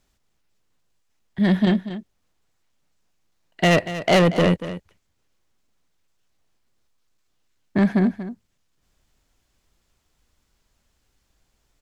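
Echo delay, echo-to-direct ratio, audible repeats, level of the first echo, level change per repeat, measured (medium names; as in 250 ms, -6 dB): 236 ms, -13.0 dB, 1, -13.0 dB, no regular repeats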